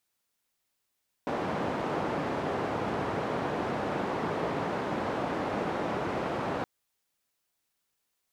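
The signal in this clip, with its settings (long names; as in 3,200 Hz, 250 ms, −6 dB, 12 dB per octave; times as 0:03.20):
band-limited noise 120–800 Hz, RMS −31.5 dBFS 5.37 s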